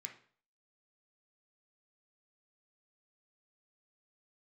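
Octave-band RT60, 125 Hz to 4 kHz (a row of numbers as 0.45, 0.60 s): 0.50, 0.45, 0.50, 0.50, 0.45, 0.45 s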